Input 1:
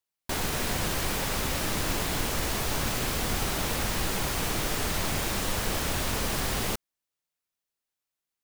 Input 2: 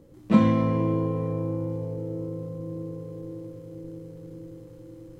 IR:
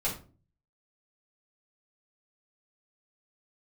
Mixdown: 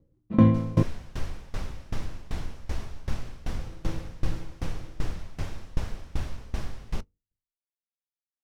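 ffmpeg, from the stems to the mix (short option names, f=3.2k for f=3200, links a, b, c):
-filter_complex "[0:a]equalizer=f=5.6k:t=o:w=0.33:g=4,bandreject=f=48.84:t=h:w=4,bandreject=f=97.68:t=h:w=4,bandreject=f=146.52:t=h:w=4,bandreject=f=195.36:t=h:w=4,bandreject=f=244.2:t=h:w=4,bandreject=f=293.04:t=h:w=4,bandreject=f=341.88:t=h:w=4,bandreject=f=390.72:t=h:w=4,bandreject=f=439.56:t=h:w=4,bandreject=f=488.4:t=h:w=4,adelay=250,volume=-7dB,asplit=2[a][b];[b]volume=-23dB[c];[1:a]volume=1dB,asplit=3[d][e][f];[d]atrim=end=0.83,asetpts=PTS-STARTPTS,afade=t=out:st=0.826:d=0.004:c=hsin[g];[e]atrim=start=0.83:end=3.59,asetpts=PTS-STARTPTS,volume=0[h];[f]atrim=start=3.59,asetpts=PTS-STARTPTS,afade=t=in:d=0.004:c=hsin[i];[g][h][i]concat=n=3:v=0:a=1[j];[2:a]atrim=start_sample=2205[k];[c][k]afir=irnorm=-1:irlink=0[l];[a][j][l]amix=inputs=3:normalize=0,agate=range=-17dB:threshold=-37dB:ratio=16:detection=peak,aemphasis=mode=reproduction:type=bsi,aeval=exprs='val(0)*pow(10,-22*if(lt(mod(2.6*n/s,1),2*abs(2.6)/1000),1-mod(2.6*n/s,1)/(2*abs(2.6)/1000),(mod(2.6*n/s,1)-2*abs(2.6)/1000)/(1-2*abs(2.6)/1000))/20)':c=same"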